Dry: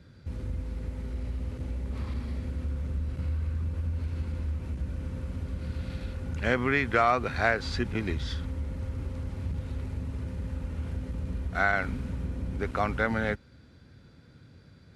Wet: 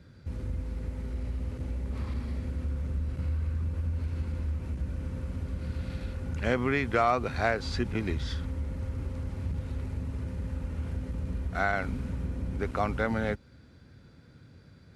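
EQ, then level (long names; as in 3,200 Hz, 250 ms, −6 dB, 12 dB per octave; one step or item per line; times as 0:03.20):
parametric band 3,500 Hz −2 dB
dynamic equaliser 1,700 Hz, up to −5 dB, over −40 dBFS, Q 1.5
0.0 dB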